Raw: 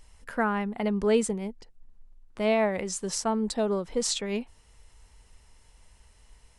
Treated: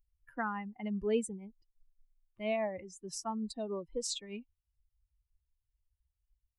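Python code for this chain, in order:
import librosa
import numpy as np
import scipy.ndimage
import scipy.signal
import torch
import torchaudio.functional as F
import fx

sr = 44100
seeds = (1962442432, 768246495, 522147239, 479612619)

y = fx.bin_expand(x, sr, power=2.0)
y = fx.high_shelf(y, sr, hz=3100.0, db=-10.5, at=(2.56, 3.08))
y = y * 10.0 ** (-6.0 / 20.0)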